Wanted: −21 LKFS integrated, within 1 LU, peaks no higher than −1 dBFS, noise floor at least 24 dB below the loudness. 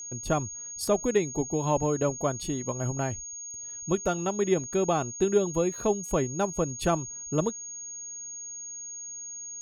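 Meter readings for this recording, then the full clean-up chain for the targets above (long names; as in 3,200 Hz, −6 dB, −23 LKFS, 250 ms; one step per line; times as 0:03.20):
interfering tone 6,600 Hz; level of the tone −37 dBFS; integrated loudness −29.0 LKFS; sample peak −11.5 dBFS; target loudness −21.0 LKFS
→ notch filter 6,600 Hz, Q 30
level +8 dB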